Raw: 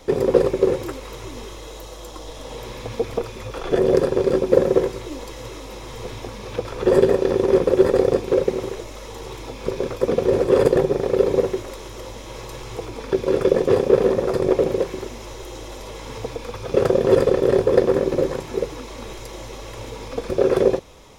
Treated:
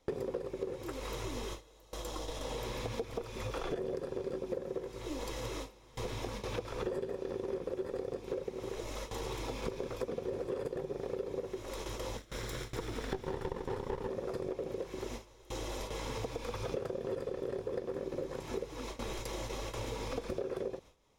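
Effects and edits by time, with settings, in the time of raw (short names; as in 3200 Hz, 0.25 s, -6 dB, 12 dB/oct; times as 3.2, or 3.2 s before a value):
12.17–14.08 minimum comb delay 0.54 ms
whole clip: gate with hold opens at -25 dBFS; compressor 12:1, threshold -31 dBFS; gain -3 dB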